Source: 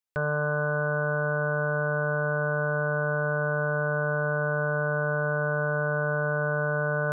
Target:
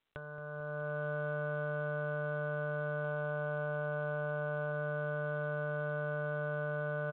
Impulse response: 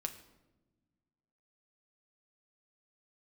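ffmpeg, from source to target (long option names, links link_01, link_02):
-filter_complex "[0:a]asettb=1/sr,asplit=3[link_01][link_02][link_03];[link_01]atrim=end=3.044[link_04];[link_02]atrim=start=3.04:end=4.72,asetpts=PTS-STARTPTS,afade=type=in:duration=0.004:curve=qsin,afade=type=out:start_time=1.676:duration=0.004:curve=qsin,equalizer=frequency=800:width_type=o:width=0.48:gain=5[link_05];[link_03]atrim=start=4.716[link_06];[link_04][link_05]acrossfade=duration=0.004:curve1=hsin:curve2=qsin[link_07];[link_07][link_06]acrossfade=duration=0.004:curve1=qsin:curve2=hsin,asplit=2[link_08][link_09];[link_09]aecho=0:1:403|806|1209|1612:0.0944|0.0529|0.0296|0.0166[link_10];[link_08][link_10]amix=inputs=2:normalize=0,acompressor=threshold=-43dB:ratio=6,asplit=2[link_11][link_12];[link_12]adelay=223,lowpass=frequency=1100:poles=1,volume=-13dB,asplit=2[link_13][link_14];[link_14]adelay=223,lowpass=frequency=1100:poles=1,volume=0.5,asplit=2[link_15][link_16];[link_16]adelay=223,lowpass=frequency=1100:poles=1,volume=0.5,asplit=2[link_17][link_18];[link_18]adelay=223,lowpass=frequency=1100:poles=1,volume=0.5,asplit=2[link_19][link_20];[link_20]adelay=223,lowpass=frequency=1100:poles=1,volume=0.5[link_21];[link_13][link_15][link_17][link_19][link_21]amix=inputs=5:normalize=0[link_22];[link_11][link_22]amix=inputs=2:normalize=0,dynaudnorm=framelen=130:gausssize=11:maxgain=10dB,asoftclip=type=tanh:threshold=-23dB,volume=-2dB" -ar 8000 -c:a pcm_mulaw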